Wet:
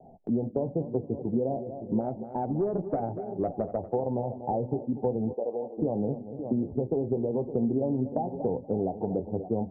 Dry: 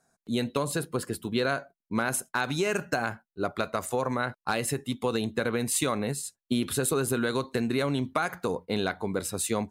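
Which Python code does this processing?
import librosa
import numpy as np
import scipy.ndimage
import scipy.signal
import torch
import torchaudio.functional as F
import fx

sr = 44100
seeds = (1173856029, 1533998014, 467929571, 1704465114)

y = scipy.signal.sosfilt(scipy.signal.butter(16, 860.0, 'lowpass', fs=sr, output='sos'), x)
y = y + 10.0 ** (-15.0 / 20.0) * np.pad(y, (int(567 * sr / 1000.0), 0))[:len(y)]
y = fx.tube_stage(y, sr, drive_db=17.0, bias=0.2, at=(2.0, 3.77))
y = fx.echo_feedback(y, sr, ms=239, feedback_pct=26, wet_db=-15)
y = fx.chorus_voices(y, sr, voices=6, hz=0.75, base_ms=14, depth_ms=4.0, mix_pct=25)
y = fx.highpass(y, sr, hz=600.0, slope=12, at=(5.32, 5.77), fade=0.02)
y = fx.band_squash(y, sr, depth_pct=70)
y = F.gain(torch.from_numpy(y), 2.5).numpy()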